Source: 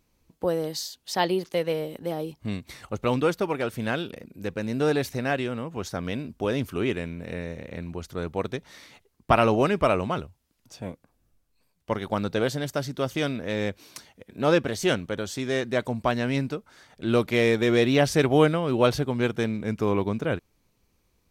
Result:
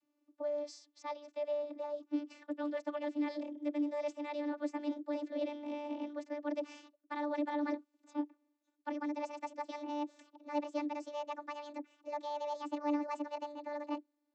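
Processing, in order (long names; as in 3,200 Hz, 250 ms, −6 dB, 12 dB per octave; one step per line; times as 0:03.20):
gliding playback speed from 102% → 195%
source passing by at 0:05.83, 22 m/s, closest 30 metres
reversed playback
downward compressor 12 to 1, threshold −38 dBFS, peak gain reduction 21.5 dB
reversed playback
channel vocoder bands 32, saw 294 Hz
level +5.5 dB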